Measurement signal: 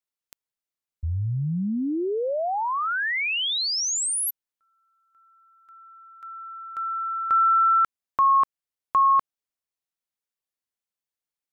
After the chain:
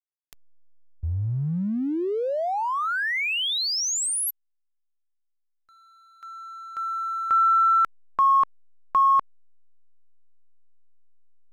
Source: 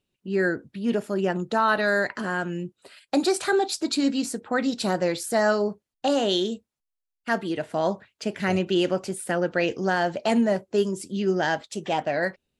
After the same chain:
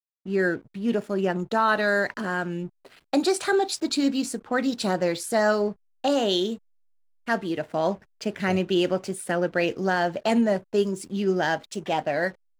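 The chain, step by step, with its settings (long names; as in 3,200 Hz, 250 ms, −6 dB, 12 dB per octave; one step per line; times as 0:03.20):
slack as between gear wheels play −44 dBFS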